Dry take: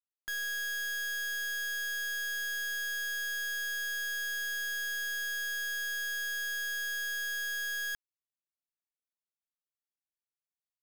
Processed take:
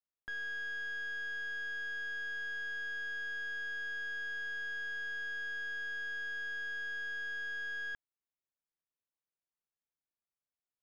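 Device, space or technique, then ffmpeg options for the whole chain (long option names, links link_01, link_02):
phone in a pocket: -af "lowpass=3400,highshelf=frequency=2500:gain=-11"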